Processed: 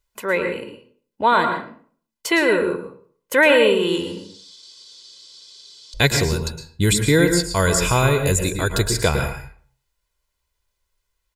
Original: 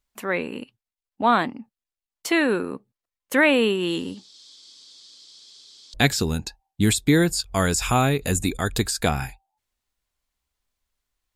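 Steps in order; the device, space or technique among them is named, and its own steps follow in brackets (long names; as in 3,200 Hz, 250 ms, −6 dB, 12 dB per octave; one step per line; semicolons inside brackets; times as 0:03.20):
microphone above a desk (comb filter 2 ms, depth 60%; convolution reverb RT60 0.50 s, pre-delay 106 ms, DRR 6 dB)
level +2 dB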